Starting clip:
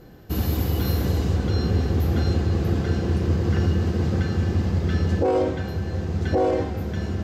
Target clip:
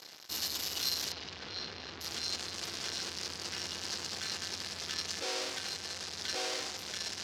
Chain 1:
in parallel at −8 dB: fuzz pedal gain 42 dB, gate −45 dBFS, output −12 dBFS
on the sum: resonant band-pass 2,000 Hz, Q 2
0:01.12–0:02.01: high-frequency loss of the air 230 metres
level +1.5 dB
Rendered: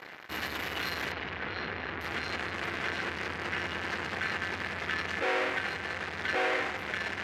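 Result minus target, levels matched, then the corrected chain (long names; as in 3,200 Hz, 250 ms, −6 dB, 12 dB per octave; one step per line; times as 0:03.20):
2,000 Hz band +9.0 dB
in parallel at −8 dB: fuzz pedal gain 42 dB, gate −45 dBFS, output −12 dBFS
on the sum: resonant band-pass 5,200 Hz, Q 2
0:01.12–0:02.01: high-frequency loss of the air 230 metres
level +1.5 dB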